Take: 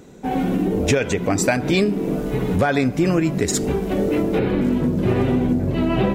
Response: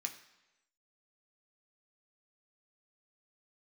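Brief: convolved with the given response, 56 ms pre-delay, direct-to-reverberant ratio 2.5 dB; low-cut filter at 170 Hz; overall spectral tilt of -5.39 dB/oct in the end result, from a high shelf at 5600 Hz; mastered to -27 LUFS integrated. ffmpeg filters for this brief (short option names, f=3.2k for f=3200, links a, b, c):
-filter_complex "[0:a]highpass=170,highshelf=f=5.6k:g=-5,asplit=2[a][b];[1:a]atrim=start_sample=2205,adelay=56[c];[b][c]afir=irnorm=-1:irlink=0,volume=-1.5dB[d];[a][d]amix=inputs=2:normalize=0,volume=-7dB"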